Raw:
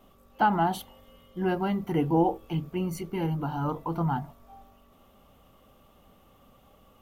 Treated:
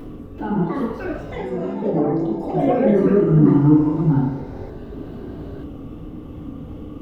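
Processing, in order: LPF 1700 Hz 6 dB/oct; resonant low shelf 460 Hz +12 dB, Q 1.5; 0.58–2.92 compressor 4:1, threshold -26 dBFS, peak gain reduction 16 dB; auto swell 0.12 s; upward compressor, threshold -21 dBFS; flange 1 Hz, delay 5.9 ms, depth 8.6 ms, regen -61%; FDN reverb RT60 1.1 s, low-frequency decay 0.7×, high-frequency decay 0.75×, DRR -6.5 dB; echoes that change speed 0.382 s, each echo +5 st, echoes 3; gain -1.5 dB

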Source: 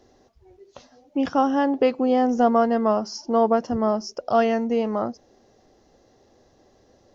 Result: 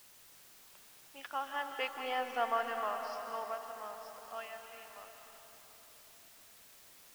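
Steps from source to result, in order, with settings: Doppler pass-by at 2.24, 6 m/s, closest 3.2 m; HPF 1200 Hz 12 dB/oct; in parallel at -4 dB: crossover distortion -50.5 dBFS; on the sum: synth low-pass 2800 Hz, resonance Q 1.6; added noise white -51 dBFS; reverb RT60 3.9 s, pre-delay 0.12 s, DRR 4.5 dB; gain -8.5 dB

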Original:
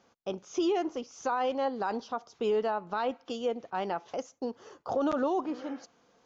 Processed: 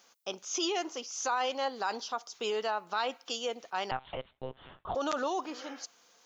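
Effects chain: tilt +4.5 dB/oct; 3.91–4.95 monotone LPC vocoder at 8 kHz 130 Hz

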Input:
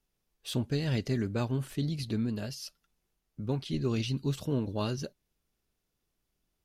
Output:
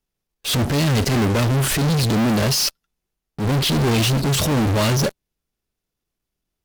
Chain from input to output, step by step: in parallel at -5 dB: fuzz box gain 58 dB, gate -58 dBFS; on the sum: transient shaper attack -7 dB, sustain -1 dB

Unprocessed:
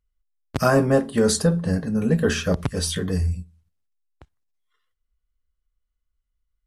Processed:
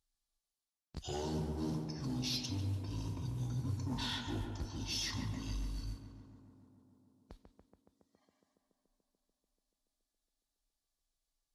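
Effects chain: HPF 55 Hz 12 dB/oct; resonant high shelf 5200 Hz +9 dB, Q 1.5; reverse; compressor 5:1, threshold -30 dBFS, peak gain reduction 17 dB; reverse; soft clip -27 dBFS, distortion -16 dB; modulation noise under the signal 27 dB; on a send: tape echo 82 ms, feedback 87%, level -5 dB, low-pass 3700 Hz; on the sum: speed mistake 78 rpm record played at 45 rpm; gain -5.5 dB

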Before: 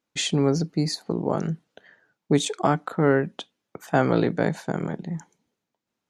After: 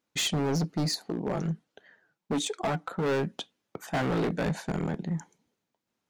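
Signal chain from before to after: 1.06–3.06 flange 1.4 Hz, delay 2.4 ms, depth 4.1 ms, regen +53%; hard clip -24 dBFS, distortion -5 dB

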